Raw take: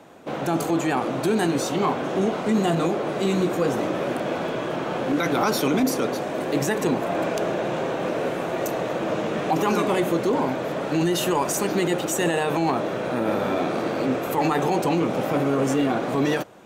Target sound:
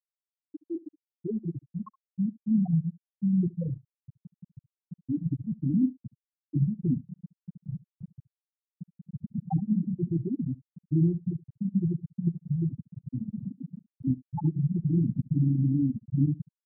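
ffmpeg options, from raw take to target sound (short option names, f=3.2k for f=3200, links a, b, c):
-af "asubboost=boost=9:cutoff=140,afftfilt=real='re*gte(hypot(re,im),0.794)':imag='im*gte(hypot(re,im),0.794)':win_size=1024:overlap=0.75,aecho=1:1:71:0.0841,volume=-5dB"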